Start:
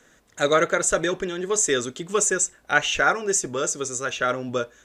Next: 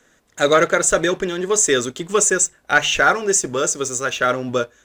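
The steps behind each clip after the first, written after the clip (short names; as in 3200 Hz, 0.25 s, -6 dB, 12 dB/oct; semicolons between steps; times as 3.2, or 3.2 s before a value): sample leveller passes 1; notches 50/100/150 Hz; gain +1.5 dB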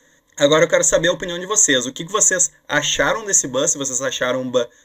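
ripple EQ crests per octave 1.1, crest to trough 15 dB; gain -1.5 dB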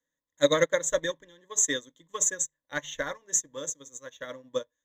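upward expander 2.5:1, over -27 dBFS; gain -6 dB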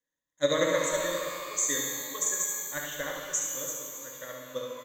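echo 70 ms -6 dB; shimmer reverb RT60 2.2 s, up +12 st, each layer -8 dB, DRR 0.5 dB; gain -5 dB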